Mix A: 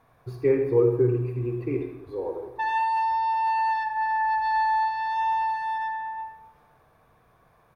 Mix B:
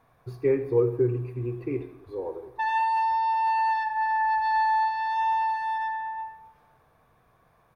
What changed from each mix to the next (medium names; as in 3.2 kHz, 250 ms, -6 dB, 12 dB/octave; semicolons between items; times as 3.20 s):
speech: send -7.5 dB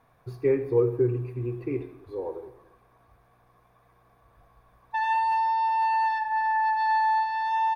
background: entry +2.35 s